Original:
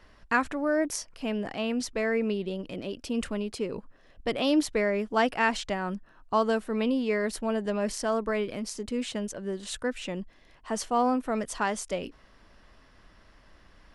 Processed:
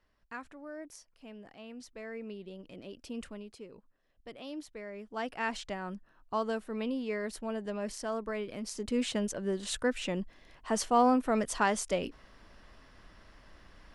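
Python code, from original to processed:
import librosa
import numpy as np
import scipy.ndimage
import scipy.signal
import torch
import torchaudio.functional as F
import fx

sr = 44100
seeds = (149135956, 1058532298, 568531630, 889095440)

y = fx.gain(x, sr, db=fx.line((1.61, -18.0), (3.09, -9.5), (3.78, -18.0), (4.81, -18.0), (5.53, -7.5), (8.45, -7.5), (8.97, 0.5)))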